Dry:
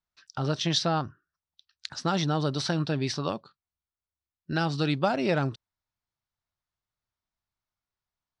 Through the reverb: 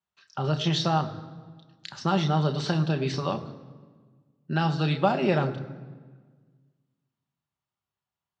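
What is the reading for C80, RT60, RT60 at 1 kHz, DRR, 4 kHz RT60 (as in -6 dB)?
13.5 dB, 1.5 s, 1.5 s, 5.0 dB, 1.1 s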